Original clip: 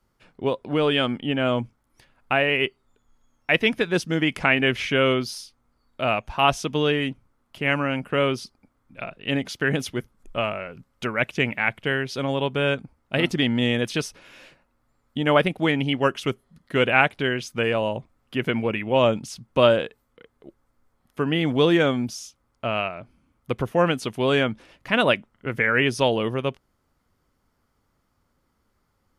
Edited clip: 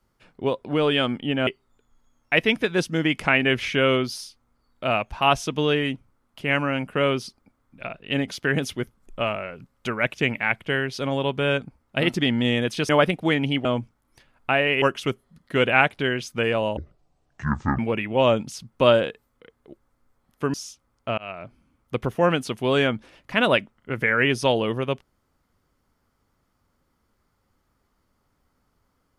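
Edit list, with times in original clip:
0:01.47–0:02.64: move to 0:16.02
0:14.06–0:15.26: remove
0:17.97–0:18.55: play speed 57%
0:21.30–0:22.10: remove
0:22.74–0:22.99: fade in

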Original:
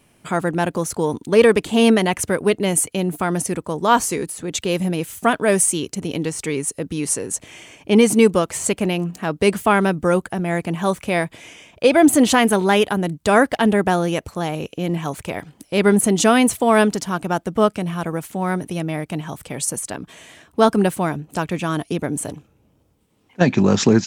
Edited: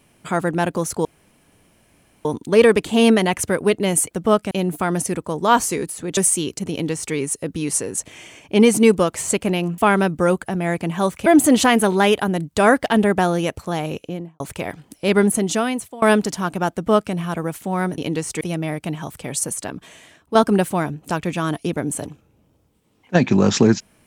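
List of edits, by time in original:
0:01.05: splice in room tone 1.20 s
0:04.57–0:05.53: remove
0:06.07–0:06.50: duplicate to 0:18.67
0:09.14–0:09.62: remove
0:11.10–0:11.95: remove
0:14.63–0:15.09: fade out and dull
0:15.79–0:16.71: fade out, to −23 dB
0:17.42–0:17.82: duplicate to 0:02.91
0:20.01–0:20.61: fade out, to −7.5 dB

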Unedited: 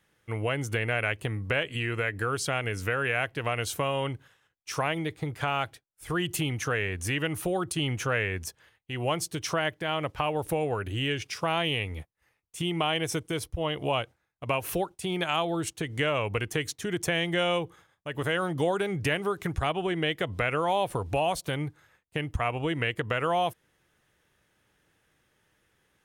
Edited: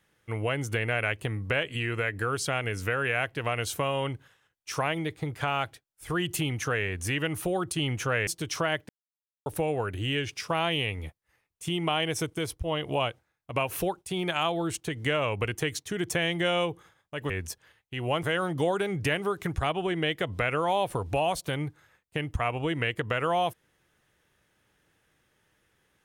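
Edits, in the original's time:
0:08.27–0:09.20: move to 0:18.23
0:09.82–0:10.39: silence

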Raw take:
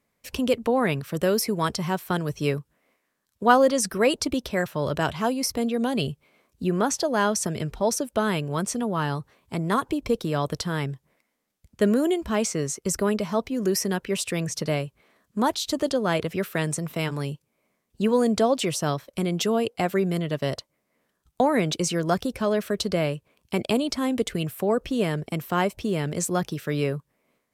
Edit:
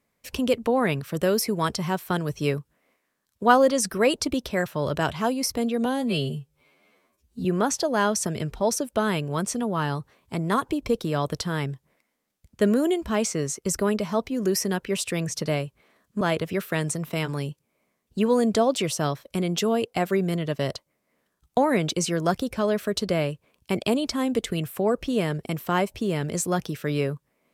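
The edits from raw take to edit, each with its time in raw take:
0:05.85–0:06.65: time-stretch 2×
0:15.41–0:16.04: remove

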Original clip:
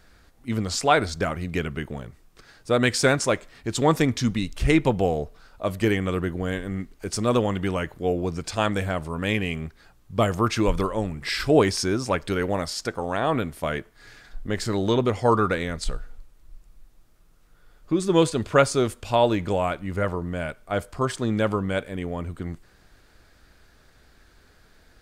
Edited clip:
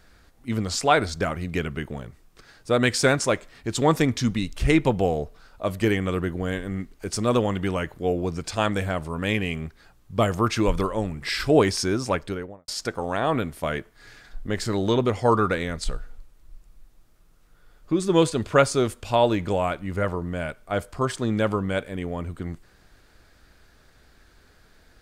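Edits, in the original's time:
0:12.08–0:12.68: fade out and dull

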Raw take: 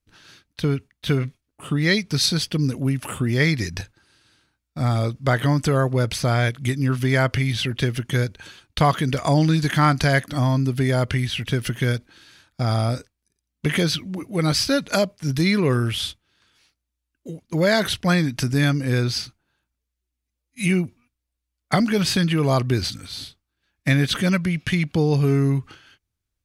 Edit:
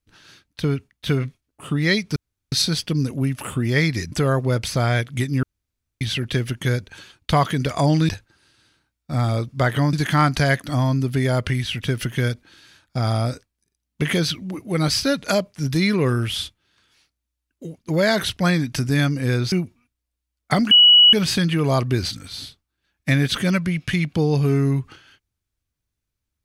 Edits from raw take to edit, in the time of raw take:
0:02.16: splice in room tone 0.36 s
0:03.76–0:05.60: move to 0:09.57
0:06.91–0:07.49: fill with room tone
0:19.16–0:20.73: remove
0:21.92: insert tone 2,930 Hz −7.5 dBFS 0.42 s

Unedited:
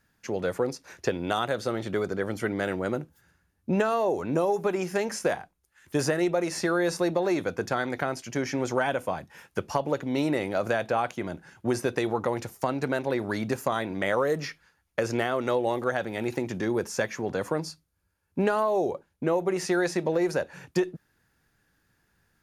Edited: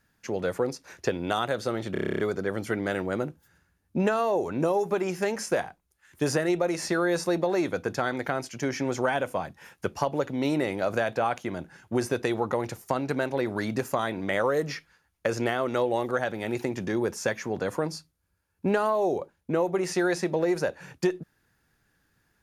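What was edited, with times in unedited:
0:01.92: stutter 0.03 s, 10 plays

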